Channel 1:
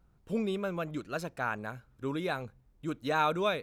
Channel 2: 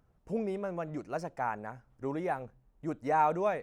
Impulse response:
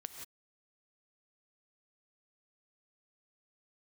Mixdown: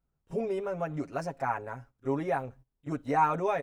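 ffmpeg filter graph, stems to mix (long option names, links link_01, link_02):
-filter_complex "[0:a]volume=-15.5dB[link_01];[1:a]agate=range=-20dB:threshold=-55dB:ratio=16:detection=peak,aecho=1:1:7.3:0.86,adelay=29,volume=0.5dB,asplit=2[link_02][link_03];[link_03]apad=whole_len=159870[link_04];[link_01][link_04]sidechaincompress=threshold=-34dB:ratio=8:attack=32:release=886[link_05];[link_05][link_02]amix=inputs=2:normalize=0"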